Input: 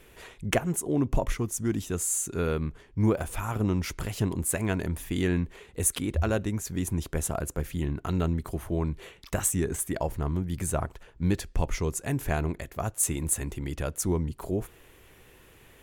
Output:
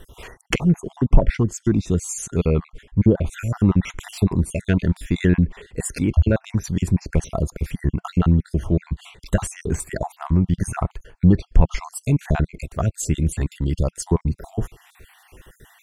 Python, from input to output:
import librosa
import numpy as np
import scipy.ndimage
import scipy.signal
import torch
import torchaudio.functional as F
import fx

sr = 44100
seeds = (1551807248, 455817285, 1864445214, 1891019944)

p1 = fx.spec_dropout(x, sr, seeds[0], share_pct=48)
p2 = fx.dynamic_eq(p1, sr, hz=180.0, q=2.1, threshold_db=-43.0, ratio=4.0, max_db=5)
p3 = fx.env_lowpass_down(p2, sr, base_hz=2600.0, full_db=-21.0)
p4 = 10.0 ** (-20.0 / 20.0) * np.tanh(p3 / 10.0 ** (-20.0 / 20.0))
p5 = p3 + (p4 * librosa.db_to_amplitude(-8.5))
p6 = fx.low_shelf(p5, sr, hz=100.0, db=9.0)
y = p6 * librosa.db_to_amplitude(4.5)